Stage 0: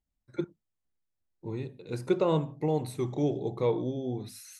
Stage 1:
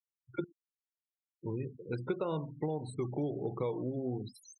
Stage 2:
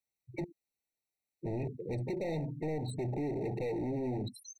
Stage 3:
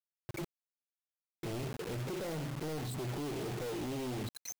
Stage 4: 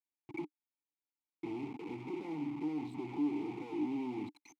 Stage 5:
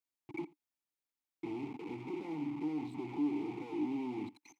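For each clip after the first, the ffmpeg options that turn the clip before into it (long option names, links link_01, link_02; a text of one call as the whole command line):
ffmpeg -i in.wav -af "afftfilt=real='re*gte(hypot(re,im),0.0112)':imag='im*gte(hypot(re,im),0.0112)':win_size=1024:overlap=0.75,equalizer=frequency=1400:width=2.7:gain=6,acompressor=threshold=-31dB:ratio=6" out.wav
ffmpeg -i in.wav -af "asoftclip=type=hard:threshold=-39dB,afftfilt=real='re*eq(mod(floor(b*sr/1024/910),2),0)':imag='im*eq(mod(floor(b*sr/1024/910),2),0)':win_size=1024:overlap=0.75,volume=6.5dB" out.wav
ffmpeg -i in.wav -af "alimiter=level_in=14.5dB:limit=-24dB:level=0:latency=1:release=144,volume=-14.5dB,acrusher=bits=7:mix=0:aa=0.000001,volume=5.5dB" out.wav
ffmpeg -i in.wav -filter_complex "[0:a]asplit=3[link_01][link_02][link_03];[link_01]bandpass=frequency=300:width_type=q:width=8,volume=0dB[link_04];[link_02]bandpass=frequency=870:width_type=q:width=8,volume=-6dB[link_05];[link_03]bandpass=frequency=2240:width_type=q:width=8,volume=-9dB[link_06];[link_04][link_05][link_06]amix=inputs=3:normalize=0,volume=10dB" out.wav
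ffmpeg -i in.wav -af "aecho=1:1:83:0.0708" out.wav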